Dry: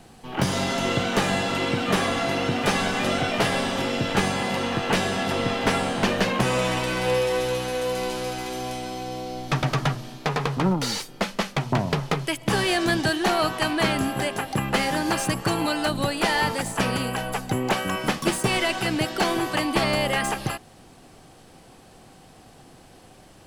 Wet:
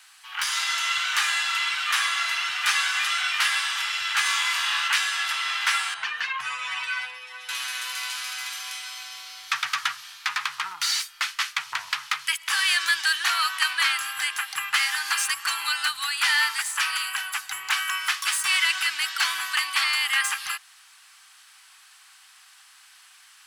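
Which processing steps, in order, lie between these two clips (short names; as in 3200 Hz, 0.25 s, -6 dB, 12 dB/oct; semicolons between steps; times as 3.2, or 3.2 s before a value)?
5.94–7.49 spectral contrast raised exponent 1.6; inverse Chebyshev high-pass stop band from 620 Hz, stop band 40 dB; 4.23–4.88 flutter echo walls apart 4.4 m, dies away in 0.66 s; gain +4.5 dB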